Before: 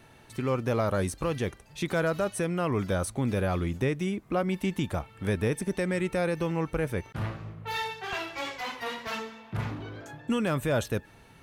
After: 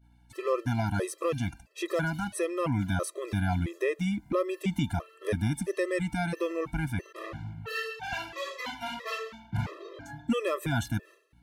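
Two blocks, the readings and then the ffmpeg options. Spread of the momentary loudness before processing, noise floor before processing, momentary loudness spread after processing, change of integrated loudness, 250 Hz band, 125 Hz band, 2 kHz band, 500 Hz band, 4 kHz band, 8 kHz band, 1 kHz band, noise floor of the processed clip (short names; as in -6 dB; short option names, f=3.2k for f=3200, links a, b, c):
8 LU, -55 dBFS, 8 LU, -1.5 dB, -1.5 dB, -1.0 dB, -0.5 dB, -2.0 dB, -1.5 dB, -1.5 dB, -1.5 dB, -60 dBFS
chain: -af "agate=range=-33dB:threshold=-44dB:ratio=3:detection=peak,aeval=exprs='val(0)+0.000891*(sin(2*PI*60*n/s)+sin(2*PI*2*60*n/s)/2+sin(2*PI*3*60*n/s)/3+sin(2*PI*4*60*n/s)/4+sin(2*PI*5*60*n/s)/5)':c=same,afftfilt=real='re*gt(sin(2*PI*1.5*pts/sr)*(1-2*mod(floor(b*sr/1024/340),2)),0)':imag='im*gt(sin(2*PI*1.5*pts/sr)*(1-2*mod(floor(b*sr/1024/340),2)),0)':win_size=1024:overlap=0.75,volume=2dB"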